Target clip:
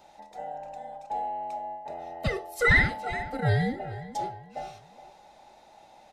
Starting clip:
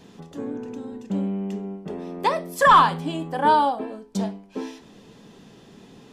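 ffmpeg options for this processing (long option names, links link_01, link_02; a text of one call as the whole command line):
ffmpeg -i in.wav -filter_complex "[0:a]afftfilt=real='real(if(between(b,1,1008),(2*floor((b-1)/48)+1)*48-b,b),0)':imag='imag(if(between(b,1,1008),(2*floor((b-1)/48)+1)*48-b,b),0)*if(between(b,1,1008),-1,1)':win_size=2048:overlap=0.75,asplit=2[link_01][link_02];[link_02]adelay=419,lowpass=frequency=3300:poles=1,volume=-15dB,asplit=2[link_03][link_04];[link_04]adelay=419,lowpass=frequency=3300:poles=1,volume=0.35,asplit=2[link_05][link_06];[link_06]adelay=419,lowpass=frequency=3300:poles=1,volume=0.35[link_07];[link_01][link_03][link_05][link_07]amix=inputs=4:normalize=0,volume=-6.5dB" out.wav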